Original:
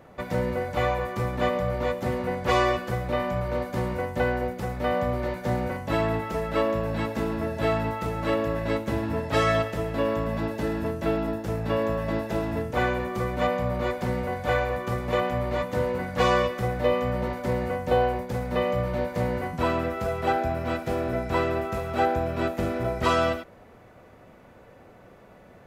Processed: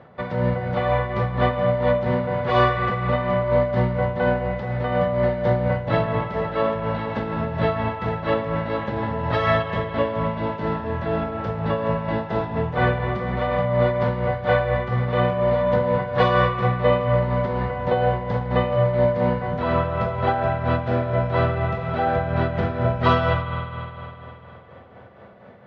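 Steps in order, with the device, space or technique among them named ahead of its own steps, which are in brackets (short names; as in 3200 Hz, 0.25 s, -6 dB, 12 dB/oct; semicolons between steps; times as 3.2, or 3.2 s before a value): combo amplifier with spring reverb and tremolo (spring tank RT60 3.2 s, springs 49 ms, chirp 35 ms, DRR 3.5 dB; tremolo 4.2 Hz, depth 49%; speaker cabinet 83–3800 Hz, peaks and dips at 120 Hz +3 dB, 310 Hz -8 dB, 2500 Hz -6 dB); gain +5.5 dB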